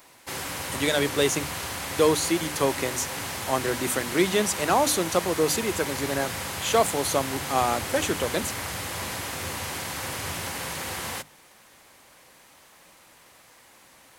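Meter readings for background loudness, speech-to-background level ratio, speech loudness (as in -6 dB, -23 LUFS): -31.0 LUFS, 5.0 dB, -26.0 LUFS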